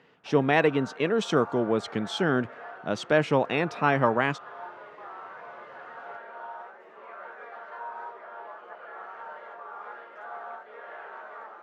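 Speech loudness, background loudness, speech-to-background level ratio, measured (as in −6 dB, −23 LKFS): −25.5 LKFS, −42.5 LKFS, 17.0 dB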